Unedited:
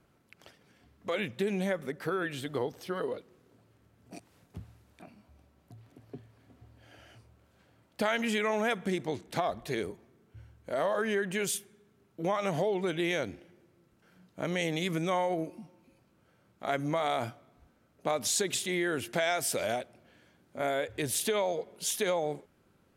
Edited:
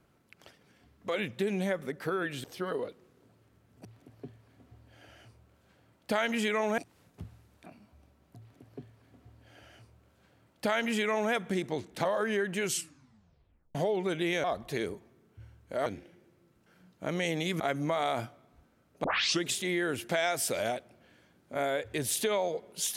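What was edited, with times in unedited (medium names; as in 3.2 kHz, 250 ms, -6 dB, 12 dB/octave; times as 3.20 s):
2.44–2.73 s: delete
5.75–8.68 s: copy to 4.14 s
9.41–10.83 s: move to 13.22 s
11.41 s: tape stop 1.12 s
14.96–16.64 s: delete
18.08 s: tape start 0.40 s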